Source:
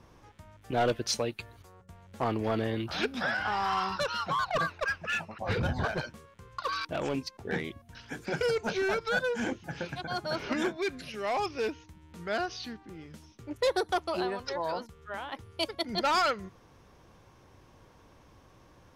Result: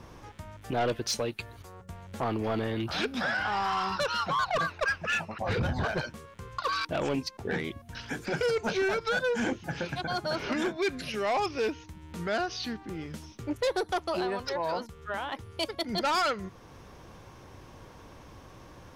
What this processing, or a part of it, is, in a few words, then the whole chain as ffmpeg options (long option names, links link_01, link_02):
soft clipper into limiter: -af "asoftclip=type=tanh:threshold=-23.5dB,alimiter=level_in=7dB:limit=-24dB:level=0:latency=1:release=446,volume=-7dB,volume=8dB"